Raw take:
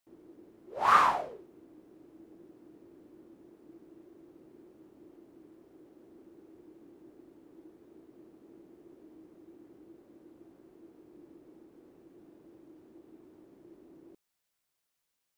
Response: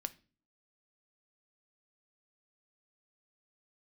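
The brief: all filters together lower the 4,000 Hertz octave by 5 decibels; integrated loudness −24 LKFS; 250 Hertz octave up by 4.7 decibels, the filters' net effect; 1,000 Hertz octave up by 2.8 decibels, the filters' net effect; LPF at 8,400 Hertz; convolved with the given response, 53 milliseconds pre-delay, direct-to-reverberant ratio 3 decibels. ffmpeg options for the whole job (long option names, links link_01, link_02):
-filter_complex "[0:a]lowpass=8400,equalizer=frequency=250:width_type=o:gain=6.5,equalizer=frequency=1000:width_type=o:gain=3.5,equalizer=frequency=4000:width_type=o:gain=-7,asplit=2[link_01][link_02];[1:a]atrim=start_sample=2205,adelay=53[link_03];[link_02][link_03]afir=irnorm=-1:irlink=0,volume=-1.5dB[link_04];[link_01][link_04]amix=inputs=2:normalize=0,volume=-2.5dB"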